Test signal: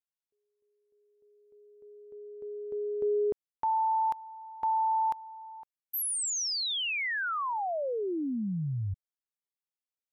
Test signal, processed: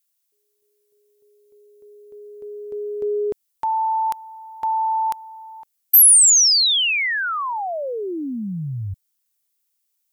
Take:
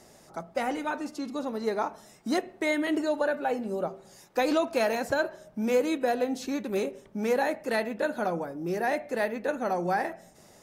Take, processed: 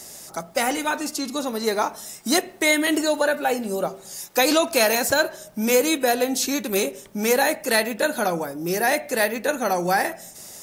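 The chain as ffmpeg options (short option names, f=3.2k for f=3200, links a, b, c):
-af "crystalizer=i=5:c=0,acontrast=21"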